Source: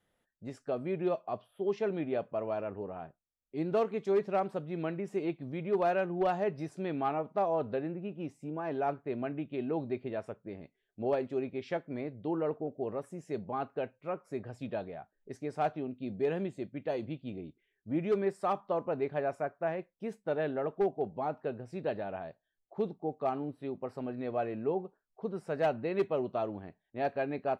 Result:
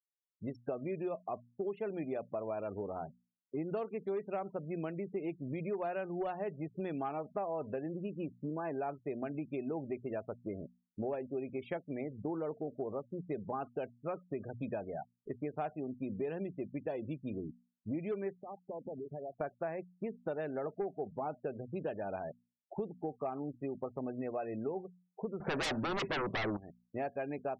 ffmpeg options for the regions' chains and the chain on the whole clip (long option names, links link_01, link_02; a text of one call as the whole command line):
ffmpeg -i in.wav -filter_complex "[0:a]asettb=1/sr,asplit=3[link_01][link_02][link_03];[link_01]atrim=end=18.434[link_04];[link_02]atrim=start=18.43:end=19.41,asetpts=PTS-STARTPTS,afade=type=in:duration=0.004:curve=qsin,afade=type=out:start_time=0.976:duration=0.004:curve=qsin,equalizer=frequency=1300:width_type=o:width=0.27:gain=-14.5,acompressor=threshold=-45dB:ratio=12:attack=3.2:release=140:knee=1:detection=peak[link_05];[link_03]atrim=start=19.406[link_06];[link_04][link_05]acrossfade=duration=0.004:curve1=hsin:curve2=qsin[link_07];[link_07][link_06]acrossfade=duration=0.004:curve1=qsin:curve2=hsin,asettb=1/sr,asplit=3[link_08][link_09][link_10];[link_08]atrim=end=25.404[link_11];[link_09]atrim=start=25.4:end=26.57,asetpts=PTS-STARTPTS,afade=type=in:duration=0.004:curve=qsin,afade=type=out:start_time=1.166:duration=0.004:curve=qsin,aemphasis=mode=reproduction:type=75fm,aeval=exprs='0.0891*sin(PI/2*4.47*val(0)/0.0891)':channel_layout=same[link_12];[link_10]atrim=start=26.566[link_13];[link_11][link_12]acrossfade=duration=0.004:curve1=hsin:curve2=qsin[link_14];[link_14][link_13]acrossfade=duration=0.004:curve1=qsin:curve2=hsin,afftfilt=real='re*gte(hypot(re,im),0.00631)':imag='im*gte(hypot(re,im),0.00631)':win_size=1024:overlap=0.75,bandreject=frequency=60:width_type=h:width=6,bandreject=frequency=120:width_type=h:width=6,bandreject=frequency=180:width_type=h:width=6,bandreject=frequency=240:width_type=h:width=6,acompressor=threshold=-42dB:ratio=5,volume=6dB" out.wav